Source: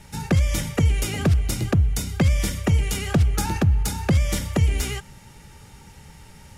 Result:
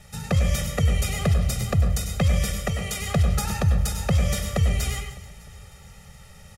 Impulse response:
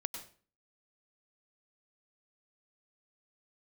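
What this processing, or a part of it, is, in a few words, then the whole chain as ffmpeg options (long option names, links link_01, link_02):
microphone above a desk: -filter_complex "[0:a]lowshelf=frequency=120:gain=-4,asettb=1/sr,asplit=3[link_01][link_02][link_03];[link_01]atrim=end=2.564[link_04];[link_02]atrim=start=2.56:end=3.01,asetpts=PTS-STARTPTS,afade=type=in:duration=0.004:curve=qsin,afade=type=out:start_time=0.446:duration=0.004:curve=qsin,highpass=frequency=200:poles=1[link_05];[link_03]atrim=start=3.006[link_06];[link_04][link_05]acrossfade=duration=0.004:curve1=hsin:curve2=qsin[link_07];[link_07][link_06]acrossfade=duration=0.004:curve1=qsin:curve2=hsin,aecho=1:1:1.6:0.84[link_08];[1:a]atrim=start_sample=2205[link_09];[link_08][link_09]afir=irnorm=-1:irlink=0,aecho=1:1:303|606|909|1212:0.1|0.054|0.0292|0.0157,volume=-2.5dB"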